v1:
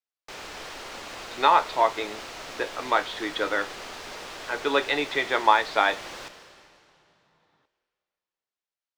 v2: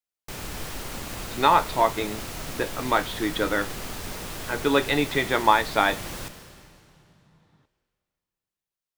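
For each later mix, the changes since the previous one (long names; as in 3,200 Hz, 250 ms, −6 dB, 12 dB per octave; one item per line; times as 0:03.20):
master: remove three-way crossover with the lows and the highs turned down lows −17 dB, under 350 Hz, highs −18 dB, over 6,600 Hz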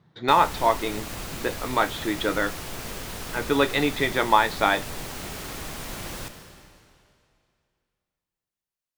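speech: entry −1.15 s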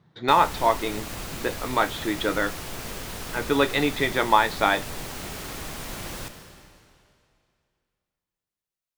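nothing changed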